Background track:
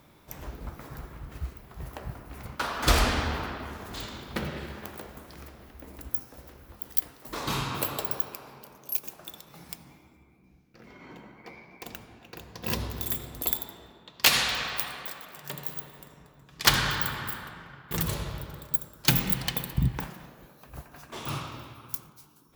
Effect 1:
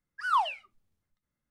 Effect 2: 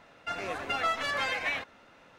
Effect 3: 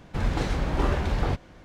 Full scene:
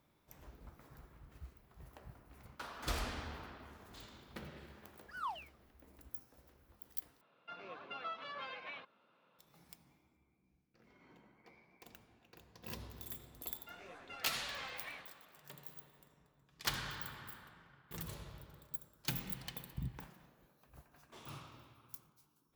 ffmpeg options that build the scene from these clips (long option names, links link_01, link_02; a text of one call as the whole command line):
ffmpeg -i bed.wav -i cue0.wav -i cue1.wav -filter_complex "[2:a]asplit=2[link_01][link_02];[0:a]volume=-16.5dB[link_03];[link_01]highpass=frequency=130:width=0.5412,highpass=frequency=130:width=1.3066,equalizer=frequency=280:width_type=q:width=4:gain=-4,equalizer=frequency=750:width_type=q:width=4:gain=-5,equalizer=frequency=1100:width_type=q:width=4:gain=4,equalizer=frequency=1900:width_type=q:width=4:gain=-10,lowpass=frequency=4100:width=0.5412,lowpass=frequency=4100:width=1.3066[link_04];[link_02]flanger=delay=17:depth=7.4:speed=1.9[link_05];[link_03]asplit=2[link_06][link_07];[link_06]atrim=end=7.214[link_08];[link_04]atrim=end=2.18,asetpts=PTS-STARTPTS,volume=-13.5dB[link_09];[link_07]atrim=start=9.386[link_10];[1:a]atrim=end=1.5,asetpts=PTS-STARTPTS,volume=-15.5dB,afade=type=in:duration=0.004:curve=hsin,afade=type=out:start_time=1.496:duration=0.004:curve=hsin,adelay=4900[link_11];[link_05]atrim=end=2.18,asetpts=PTS-STARTPTS,volume=-15.5dB,afade=type=in:duration=0.004:curve=hsin,afade=type=out:start_time=2.176:duration=0.004:curve=hsin,adelay=13400[link_12];[link_08][link_09]acrossfade=duration=0.004:curve1=hsin:curve2=hsin[link_13];[link_13][link_10]acrossfade=duration=0.004:curve1=hsin:curve2=hsin[link_14];[link_14][link_11][link_12]amix=inputs=3:normalize=0" out.wav